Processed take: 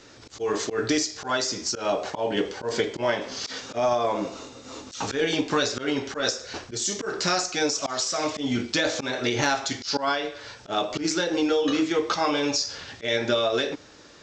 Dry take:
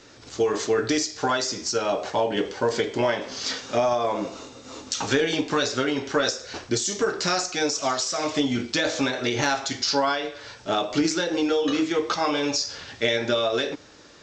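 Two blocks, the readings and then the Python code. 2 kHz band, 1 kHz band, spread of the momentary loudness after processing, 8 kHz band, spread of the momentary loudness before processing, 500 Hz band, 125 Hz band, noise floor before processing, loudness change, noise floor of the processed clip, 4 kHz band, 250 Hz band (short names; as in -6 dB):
-1.0 dB, -1.5 dB, 9 LU, -0.5 dB, 6 LU, -2.0 dB, -2.0 dB, -48 dBFS, -1.5 dB, -49 dBFS, -1.0 dB, -1.5 dB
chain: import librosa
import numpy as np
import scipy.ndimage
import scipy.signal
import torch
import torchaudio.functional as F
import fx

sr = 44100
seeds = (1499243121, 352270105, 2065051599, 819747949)

y = fx.auto_swell(x, sr, attack_ms=112.0)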